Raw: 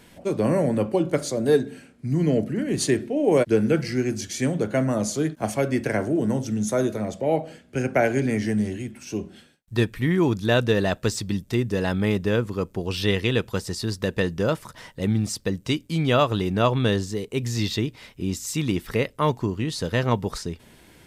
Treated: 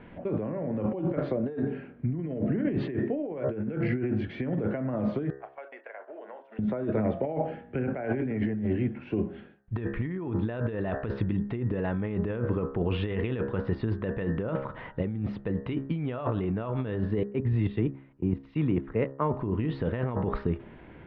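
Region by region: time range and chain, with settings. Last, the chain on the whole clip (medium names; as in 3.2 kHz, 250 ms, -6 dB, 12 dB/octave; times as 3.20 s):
5.30–6.59 s: gate -27 dBFS, range -20 dB + high-pass 600 Hz 24 dB/octave + compression 4:1, threshold -45 dBFS
17.23–19.34 s: treble shelf 3.8 kHz -8.5 dB + level held to a coarse grid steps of 14 dB + three bands expanded up and down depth 100%
whole clip: Bessel low-pass 1.6 kHz, order 8; de-hum 67.92 Hz, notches 28; compressor with a negative ratio -29 dBFS, ratio -1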